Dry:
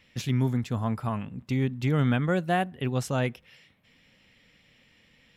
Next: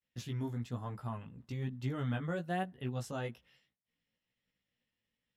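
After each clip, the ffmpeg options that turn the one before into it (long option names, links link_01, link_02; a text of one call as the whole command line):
ffmpeg -i in.wav -af "flanger=delay=15.5:depth=2.8:speed=1.1,equalizer=frequency=2300:width=7.6:gain=-7.5,agate=range=-33dB:threshold=-54dB:ratio=3:detection=peak,volume=-8dB" out.wav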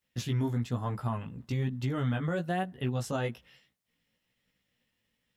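ffmpeg -i in.wav -af "alimiter=level_in=6.5dB:limit=-24dB:level=0:latency=1:release=144,volume=-6.5dB,volume=8.5dB" out.wav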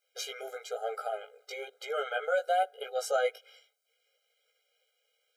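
ffmpeg -i in.wav -af "afftfilt=real='re*eq(mod(floor(b*sr/1024/410),2),1)':imag='im*eq(mod(floor(b*sr/1024/410),2),1)':win_size=1024:overlap=0.75,volume=7dB" out.wav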